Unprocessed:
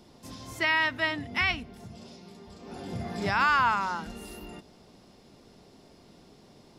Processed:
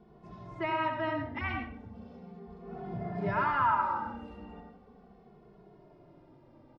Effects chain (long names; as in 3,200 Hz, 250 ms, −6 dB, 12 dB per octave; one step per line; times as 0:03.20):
low-pass filter 1,400 Hz 12 dB per octave
on a send at −3 dB: convolution reverb RT60 0.55 s, pre-delay 63 ms
on the sum: barber-pole flanger 2.3 ms −0.38 Hz